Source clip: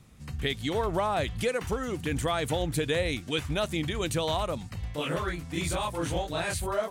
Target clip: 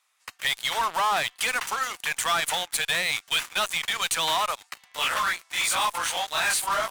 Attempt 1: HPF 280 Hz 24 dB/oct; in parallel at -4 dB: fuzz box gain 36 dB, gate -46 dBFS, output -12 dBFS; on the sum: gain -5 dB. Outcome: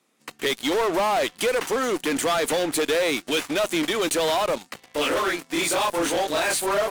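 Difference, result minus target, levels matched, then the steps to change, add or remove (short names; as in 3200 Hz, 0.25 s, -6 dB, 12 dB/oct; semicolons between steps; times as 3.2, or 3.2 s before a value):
250 Hz band +18.5 dB
change: HPF 900 Hz 24 dB/oct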